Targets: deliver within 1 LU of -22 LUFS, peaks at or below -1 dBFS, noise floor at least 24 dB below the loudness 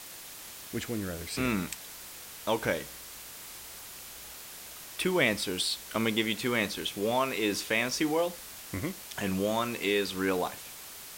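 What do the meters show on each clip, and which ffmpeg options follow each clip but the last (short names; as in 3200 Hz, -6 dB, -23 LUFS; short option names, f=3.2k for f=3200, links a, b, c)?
noise floor -46 dBFS; noise floor target -55 dBFS; loudness -30.5 LUFS; peak -12.0 dBFS; loudness target -22.0 LUFS
-> -af "afftdn=nr=9:nf=-46"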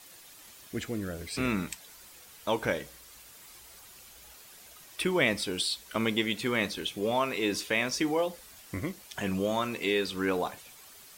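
noise floor -52 dBFS; noise floor target -55 dBFS
-> -af "afftdn=nr=6:nf=-52"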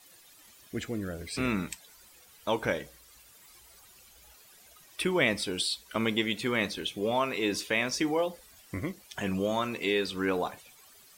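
noise floor -57 dBFS; loudness -30.5 LUFS; peak -12.0 dBFS; loudness target -22.0 LUFS
-> -af "volume=8.5dB"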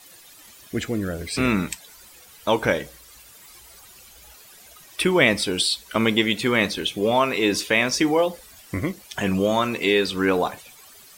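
loudness -22.0 LUFS; peak -3.5 dBFS; noise floor -48 dBFS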